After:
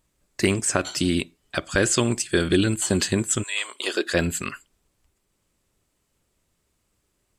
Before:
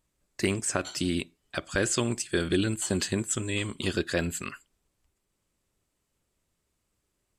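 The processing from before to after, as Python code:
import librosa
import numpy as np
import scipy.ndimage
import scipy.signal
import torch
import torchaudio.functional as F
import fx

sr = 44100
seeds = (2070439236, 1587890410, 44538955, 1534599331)

y = fx.highpass(x, sr, hz=fx.line((3.42, 1000.0), (4.13, 250.0)), slope=24, at=(3.42, 4.13), fade=0.02)
y = y * 10.0 ** (6.0 / 20.0)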